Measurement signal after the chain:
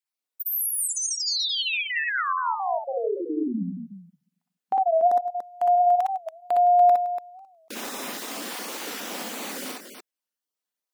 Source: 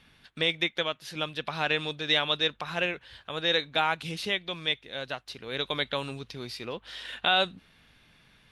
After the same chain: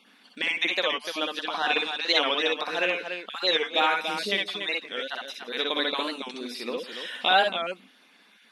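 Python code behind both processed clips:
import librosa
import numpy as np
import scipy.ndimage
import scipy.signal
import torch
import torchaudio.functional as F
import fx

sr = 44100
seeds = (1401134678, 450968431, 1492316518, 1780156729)

p1 = fx.spec_dropout(x, sr, seeds[0], share_pct=25)
p2 = fx.brickwall_highpass(p1, sr, low_hz=190.0)
p3 = p2 + fx.echo_multitap(p2, sr, ms=(54, 61, 65, 165, 289), db=(-14.0, -3.0, -8.5, -16.0, -7.5), dry=0)
p4 = fx.record_warp(p3, sr, rpm=45.0, depth_cents=160.0)
y = F.gain(torch.from_numpy(p4), 2.0).numpy()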